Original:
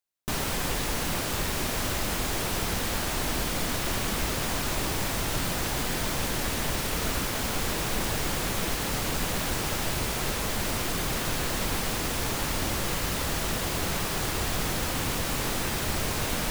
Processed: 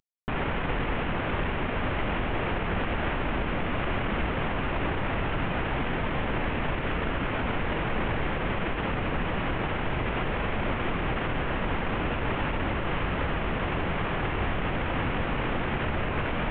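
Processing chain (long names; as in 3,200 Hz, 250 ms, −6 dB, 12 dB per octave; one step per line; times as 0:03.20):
variable-slope delta modulation 16 kbit/s
brickwall limiter −23.5 dBFS, peak gain reduction 6 dB
level +4.5 dB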